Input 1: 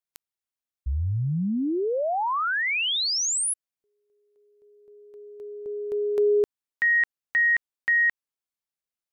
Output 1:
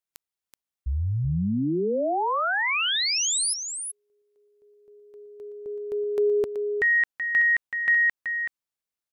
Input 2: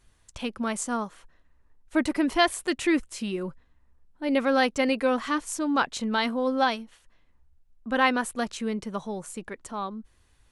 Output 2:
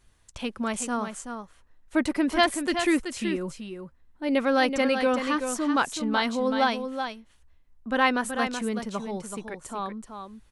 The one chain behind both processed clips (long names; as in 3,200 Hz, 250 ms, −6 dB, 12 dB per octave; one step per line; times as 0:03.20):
single-tap delay 378 ms −7.5 dB